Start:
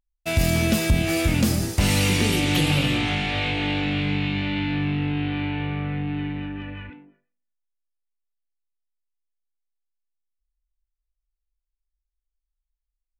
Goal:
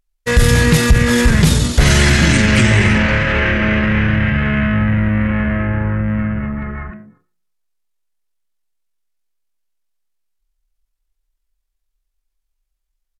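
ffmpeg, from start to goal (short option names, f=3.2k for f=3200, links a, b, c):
-af "acontrast=88,asetrate=32097,aresample=44100,atempo=1.37395,volume=3dB"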